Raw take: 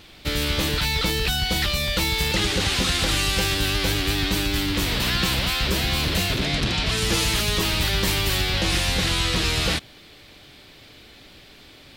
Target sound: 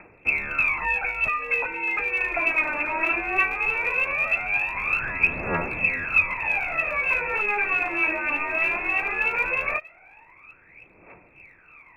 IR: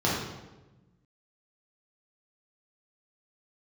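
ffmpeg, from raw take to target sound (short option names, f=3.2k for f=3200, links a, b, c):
-af "highpass=f=53:p=1,lowpass=f=2.3k:t=q:w=0.5098,lowpass=f=2.3k:t=q:w=0.6013,lowpass=f=2.3k:t=q:w=0.9,lowpass=f=2.3k:t=q:w=2.563,afreqshift=-2700,aphaser=in_gain=1:out_gain=1:delay=3.4:decay=0.79:speed=0.18:type=triangular,volume=-3.5dB"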